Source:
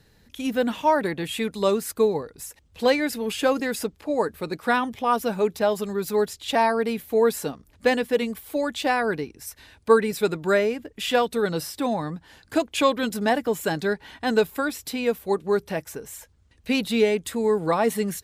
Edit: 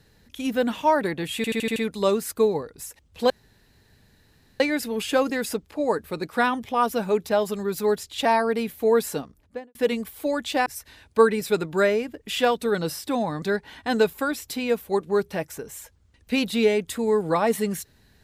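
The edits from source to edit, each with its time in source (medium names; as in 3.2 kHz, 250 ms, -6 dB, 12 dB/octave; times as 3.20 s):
1.36 s: stutter 0.08 s, 6 plays
2.90 s: insert room tone 1.30 s
7.48–8.05 s: studio fade out
8.96–9.37 s: delete
12.13–13.79 s: delete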